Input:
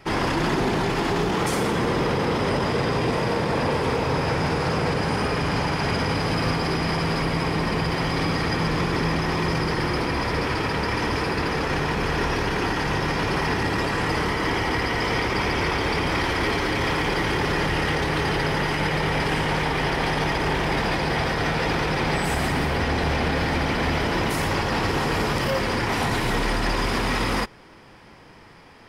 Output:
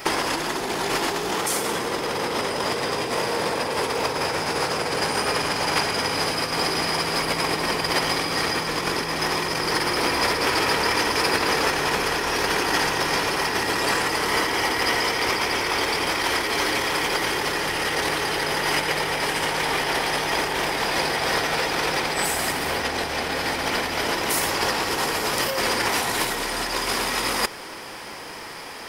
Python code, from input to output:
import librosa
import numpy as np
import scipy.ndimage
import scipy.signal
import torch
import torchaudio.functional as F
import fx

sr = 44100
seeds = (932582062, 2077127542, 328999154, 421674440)

y = fx.high_shelf(x, sr, hz=7800.0, db=11.0)
y = fx.over_compress(y, sr, threshold_db=-27.0, ratio=-0.5)
y = fx.bass_treble(y, sr, bass_db=-13, treble_db=4)
y = F.gain(torch.from_numpy(y), 6.5).numpy()